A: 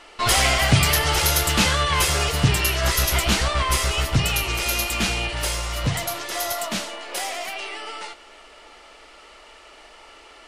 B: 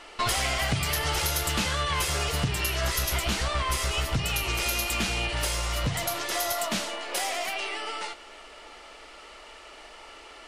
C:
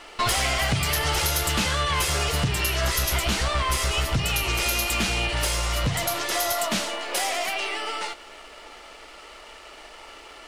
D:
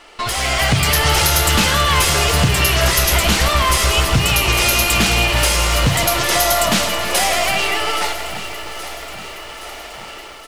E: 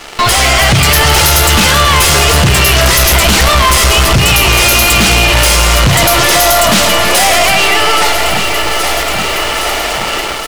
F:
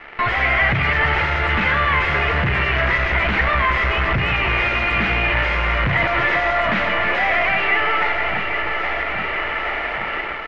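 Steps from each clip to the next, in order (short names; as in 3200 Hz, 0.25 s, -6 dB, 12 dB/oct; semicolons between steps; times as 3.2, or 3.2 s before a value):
compressor 6:1, threshold -24 dBFS, peak gain reduction 13 dB
sample leveller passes 1
AGC gain up to 9.5 dB; feedback echo 0.822 s, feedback 59%, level -14.5 dB; lo-fi delay 0.162 s, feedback 80%, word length 6-bit, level -13 dB
sample leveller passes 3; limiter -12.5 dBFS, peak gain reduction 9.5 dB; gain +8.5 dB
ladder low-pass 2300 Hz, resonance 55%; gain -1.5 dB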